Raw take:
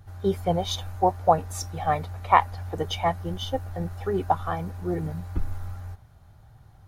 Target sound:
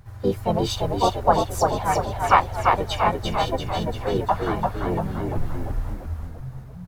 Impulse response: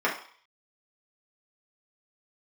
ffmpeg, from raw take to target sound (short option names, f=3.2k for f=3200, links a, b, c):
-filter_complex "[0:a]asplit=3[a][b][c];[b]asetrate=35002,aresample=44100,atempo=1.25992,volume=-9dB[d];[c]asetrate=55563,aresample=44100,atempo=0.793701,volume=-2dB[e];[a][d][e]amix=inputs=3:normalize=0,asplit=9[f][g][h][i][j][k][l][m][n];[g]adelay=343,afreqshift=-48,volume=-3dB[o];[h]adelay=686,afreqshift=-96,volume=-8dB[p];[i]adelay=1029,afreqshift=-144,volume=-13.1dB[q];[j]adelay=1372,afreqshift=-192,volume=-18.1dB[r];[k]adelay=1715,afreqshift=-240,volume=-23.1dB[s];[l]adelay=2058,afreqshift=-288,volume=-28.2dB[t];[m]adelay=2401,afreqshift=-336,volume=-33.2dB[u];[n]adelay=2744,afreqshift=-384,volume=-38.3dB[v];[f][o][p][q][r][s][t][u][v]amix=inputs=9:normalize=0,volume=-1dB"